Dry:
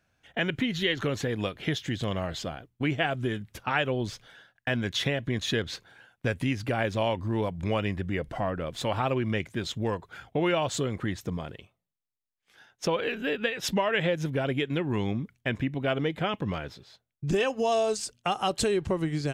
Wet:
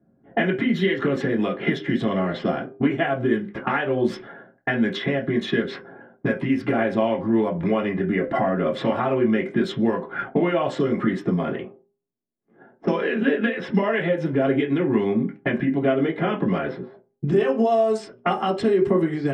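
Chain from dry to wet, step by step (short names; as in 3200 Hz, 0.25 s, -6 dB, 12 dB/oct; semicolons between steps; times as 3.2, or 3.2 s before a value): compressor 12:1, threshold -36 dBFS, peak gain reduction 15.5 dB; de-hum 402.9 Hz, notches 15; reverb RT60 0.30 s, pre-delay 3 ms, DRR -2 dB; low-pass opened by the level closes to 350 Hz, open at -21.5 dBFS; gain +4 dB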